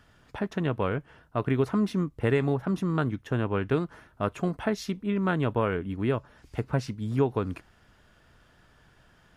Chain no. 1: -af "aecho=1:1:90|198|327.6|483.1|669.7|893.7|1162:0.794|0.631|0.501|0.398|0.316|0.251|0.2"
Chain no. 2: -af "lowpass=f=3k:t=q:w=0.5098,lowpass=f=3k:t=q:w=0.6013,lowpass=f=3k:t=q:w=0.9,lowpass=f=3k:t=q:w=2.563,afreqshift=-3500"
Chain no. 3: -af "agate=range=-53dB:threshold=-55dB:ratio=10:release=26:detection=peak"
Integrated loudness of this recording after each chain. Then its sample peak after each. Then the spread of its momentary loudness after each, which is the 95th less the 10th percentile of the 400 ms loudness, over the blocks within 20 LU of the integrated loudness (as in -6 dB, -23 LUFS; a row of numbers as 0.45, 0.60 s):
-25.0, -25.0, -29.0 LUFS; -9.0, -11.5, -13.0 dBFS; 9, 9, 9 LU